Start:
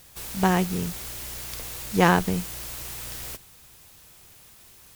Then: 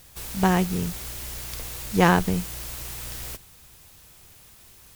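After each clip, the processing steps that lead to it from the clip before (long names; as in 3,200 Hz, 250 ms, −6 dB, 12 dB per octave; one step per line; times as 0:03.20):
low-shelf EQ 100 Hz +6 dB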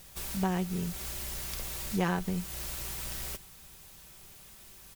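comb filter 5.2 ms, depth 40%
downward compressor 2 to 1, threshold −32 dBFS, peak gain reduction 12 dB
level −2 dB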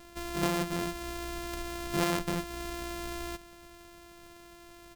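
samples sorted by size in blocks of 128 samples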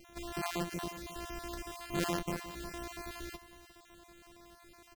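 time-frequency cells dropped at random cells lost 32%
single-tap delay 356 ms −15 dB
level −3.5 dB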